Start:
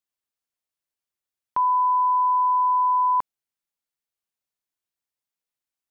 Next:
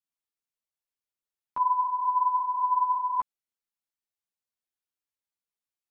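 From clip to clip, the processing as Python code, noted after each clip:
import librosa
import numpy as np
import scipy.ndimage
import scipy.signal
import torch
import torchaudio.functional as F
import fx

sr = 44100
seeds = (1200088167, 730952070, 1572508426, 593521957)

y = fx.ensemble(x, sr)
y = F.gain(torch.from_numpy(y), -3.0).numpy()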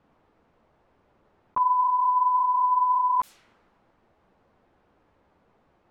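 y = fx.env_lowpass(x, sr, base_hz=840.0, full_db=-25.5)
y = fx.env_flatten(y, sr, amount_pct=70)
y = F.gain(torch.from_numpy(y), 1.5).numpy()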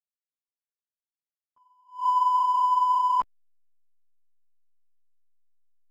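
y = fx.backlash(x, sr, play_db=-36.5)
y = fx.attack_slew(y, sr, db_per_s=190.0)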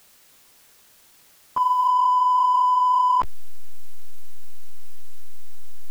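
y = fx.env_flatten(x, sr, amount_pct=100)
y = F.gain(torch.from_numpy(y), 2.0).numpy()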